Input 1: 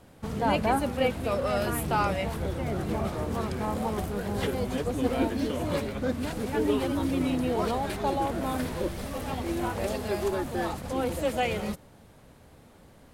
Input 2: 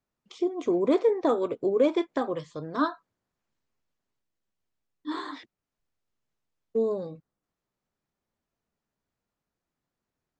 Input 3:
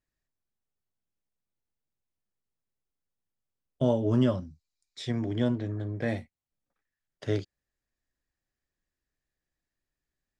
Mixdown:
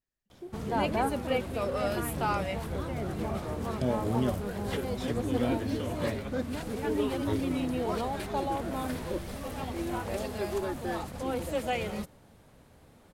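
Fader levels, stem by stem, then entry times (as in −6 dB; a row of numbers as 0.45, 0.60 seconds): −3.5, −17.0, −5.5 decibels; 0.30, 0.00, 0.00 seconds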